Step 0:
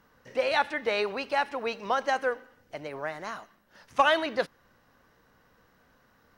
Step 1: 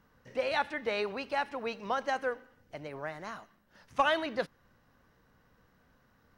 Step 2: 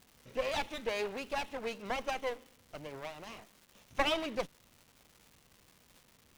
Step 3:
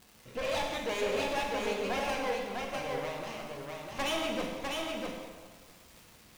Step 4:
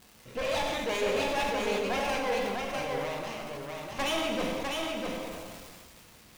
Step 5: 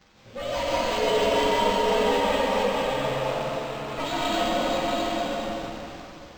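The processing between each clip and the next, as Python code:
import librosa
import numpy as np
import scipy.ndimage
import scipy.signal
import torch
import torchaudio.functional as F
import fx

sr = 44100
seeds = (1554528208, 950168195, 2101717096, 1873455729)

y1 = fx.bass_treble(x, sr, bass_db=6, treble_db=-1)
y1 = F.gain(torch.from_numpy(y1), -5.0).numpy()
y2 = fx.lower_of_two(y1, sr, delay_ms=0.31)
y2 = fx.dmg_crackle(y2, sr, seeds[0], per_s=470.0, level_db=-47.0)
y2 = F.gain(torch.from_numpy(y2), -1.5).numpy()
y3 = np.clip(10.0 ** (33.5 / 20.0) * y2, -1.0, 1.0) / 10.0 ** (33.5 / 20.0)
y3 = y3 + 10.0 ** (-3.5 / 20.0) * np.pad(y3, (int(651 * sr / 1000.0), 0))[:len(y3)]
y3 = fx.rev_plate(y3, sr, seeds[1], rt60_s=1.6, hf_ratio=0.8, predelay_ms=0, drr_db=0.0)
y3 = F.gain(torch.from_numpy(y3), 2.5).numpy()
y4 = fx.sustainer(y3, sr, db_per_s=24.0)
y4 = F.gain(torch.from_numpy(y4), 2.0).numpy()
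y5 = fx.partial_stretch(y4, sr, pct=109)
y5 = fx.rev_plate(y5, sr, seeds[2], rt60_s=2.8, hf_ratio=0.85, predelay_ms=120, drr_db=-5.5)
y5 = np.interp(np.arange(len(y5)), np.arange(len(y5))[::4], y5[::4])
y5 = F.gain(torch.from_numpy(y5), 3.5).numpy()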